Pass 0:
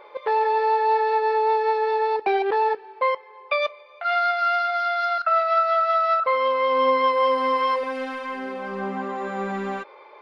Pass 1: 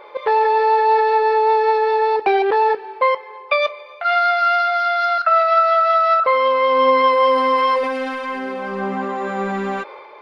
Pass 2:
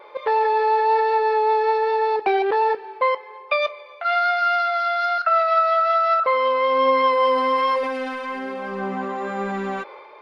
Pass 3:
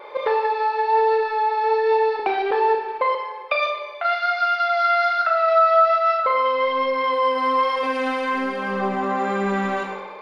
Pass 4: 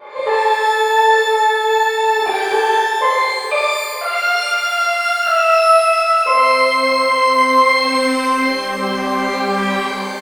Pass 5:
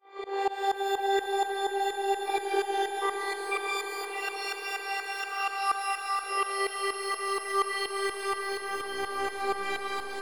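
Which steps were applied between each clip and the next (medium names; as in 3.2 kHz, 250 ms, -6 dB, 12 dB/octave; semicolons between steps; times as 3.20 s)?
transient shaper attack +1 dB, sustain +5 dB; trim +5 dB
vibrato 1.2 Hz 14 cents; trim -3.5 dB
compression, threshold -23 dBFS, peak gain reduction 9 dB; Schroeder reverb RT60 0.79 s, combs from 26 ms, DRR 2 dB; trim +4 dB
feedback delay 905 ms, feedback 24%, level -15 dB; pitch-shifted reverb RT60 1.2 s, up +12 st, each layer -8 dB, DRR -10 dB; trim -5 dB
tremolo saw up 4.2 Hz, depth 95%; robot voice 392 Hz; echo with a slow build-up 87 ms, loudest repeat 8, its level -14 dB; trim -8 dB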